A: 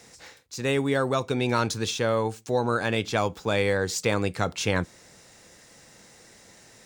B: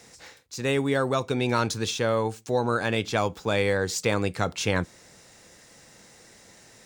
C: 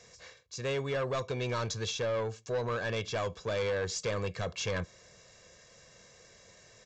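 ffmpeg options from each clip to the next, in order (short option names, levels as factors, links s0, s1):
-af anull
-af "aecho=1:1:1.8:0.65,aresample=16000,asoftclip=type=tanh:threshold=0.0891,aresample=44100,volume=0.501"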